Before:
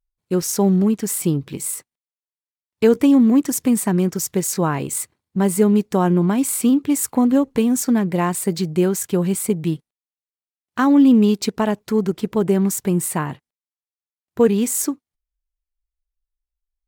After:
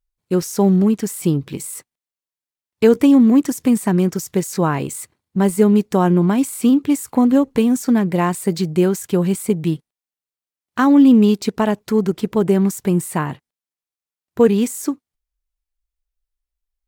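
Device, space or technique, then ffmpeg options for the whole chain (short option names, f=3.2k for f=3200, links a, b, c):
de-esser from a sidechain: -filter_complex "[0:a]asplit=2[a][b];[b]highpass=5.3k,apad=whole_len=744378[c];[a][c]sidechaincompress=threshold=-29dB:ratio=12:attack=2.8:release=30,volume=2dB"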